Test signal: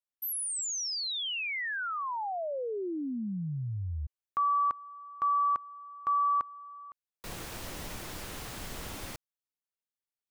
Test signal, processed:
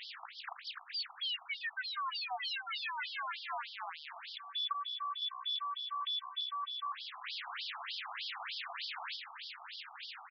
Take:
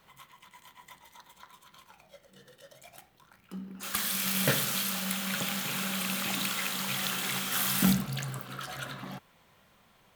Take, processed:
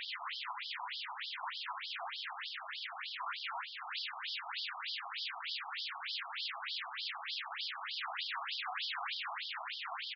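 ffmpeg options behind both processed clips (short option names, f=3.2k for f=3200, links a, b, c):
-filter_complex "[0:a]aeval=exprs='val(0)+0.5*0.0211*sgn(val(0))':c=same,acompressor=threshold=-31dB:ratio=12:attack=0.11:release=64:knee=6:detection=peak,aeval=exprs='0.0376*sin(PI/2*5.62*val(0)/0.0376)':c=same,aresample=11025,aresample=44100,asplit=7[a][b][c][d][e][f][g];[b]adelay=226,afreqshift=-63,volume=-10.5dB[h];[c]adelay=452,afreqshift=-126,volume=-16.3dB[i];[d]adelay=678,afreqshift=-189,volume=-22.2dB[j];[e]adelay=904,afreqshift=-252,volume=-28dB[k];[f]adelay=1130,afreqshift=-315,volume=-33.9dB[l];[g]adelay=1356,afreqshift=-378,volume=-39.7dB[m];[a][h][i][j][k][l][m]amix=inputs=7:normalize=0,afftfilt=real='re*between(b*sr/1024,910*pow(4300/910,0.5+0.5*sin(2*PI*3.3*pts/sr))/1.41,910*pow(4300/910,0.5+0.5*sin(2*PI*3.3*pts/sr))*1.41)':imag='im*between(b*sr/1024,910*pow(4300/910,0.5+0.5*sin(2*PI*3.3*pts/sr))/1.41,910*pow(4300/910,0.5+0.5*sin(2*PI*3.3*pts/sr))*1.41)':win_size=1024:overlap=0.75"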